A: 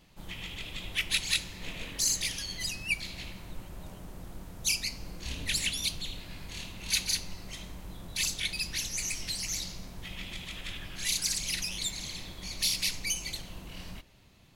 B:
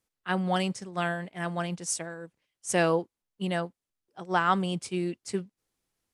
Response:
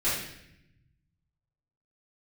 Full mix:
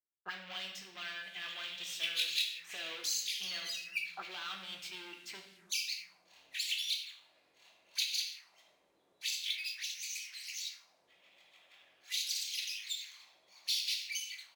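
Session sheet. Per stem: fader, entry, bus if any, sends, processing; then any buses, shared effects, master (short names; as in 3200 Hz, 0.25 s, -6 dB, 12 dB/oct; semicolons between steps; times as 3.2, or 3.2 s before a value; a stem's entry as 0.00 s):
+2.5 dB, 1.05 s, send -9.5 dB, differentiator
-13.5 dB, 0.00 s, send -10 dB, limiter -17 dBFS, peak gain reduction 6.5 dB; sample leveller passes 5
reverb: on, RT60 0.80 s, pre-delay 3 ms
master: low shelf 77 Hz +9.5 dB; auto-wah 380–3200 Hz, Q 2.2, up, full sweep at -27 dBFS; decimation joined by straight lines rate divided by 2×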